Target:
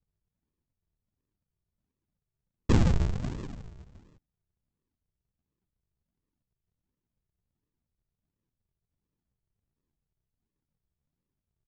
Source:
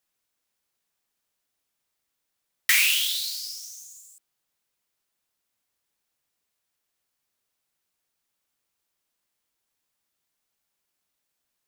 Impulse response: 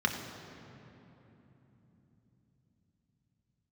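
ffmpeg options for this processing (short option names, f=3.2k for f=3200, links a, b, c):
-af "equalizer=f=2.3k:w=1.1:g=5,aresample=16000,acrusher=samples=42:mix=1:aa=0.000001:lfo=1:lforange=42:lforate=1.4,aresample=44100,lowshelf=f=280:g=8,volume=-8.5dB"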